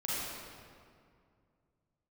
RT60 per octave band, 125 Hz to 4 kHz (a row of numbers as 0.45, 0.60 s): 3.1, 2.7, 2.4, 2.2, 1.8, 1.4 s